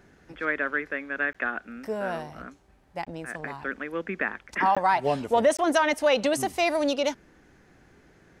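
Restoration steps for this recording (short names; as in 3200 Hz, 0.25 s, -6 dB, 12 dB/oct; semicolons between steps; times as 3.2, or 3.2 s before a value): interpolate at 1.33/3.05/4.75/5.57, 16 ms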